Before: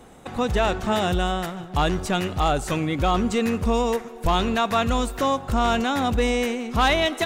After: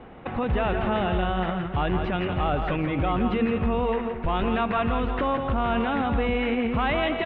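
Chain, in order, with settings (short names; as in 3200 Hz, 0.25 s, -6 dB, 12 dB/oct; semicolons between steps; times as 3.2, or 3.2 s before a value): steep low-pass 3000 Hz 36 dB/oct; limiter -20.5 dBFS, peak gain reduction 10 dB; on a send: tapped delay 0.167/0.522 s -6.5/-15 dB; on the sum: gain +3 dB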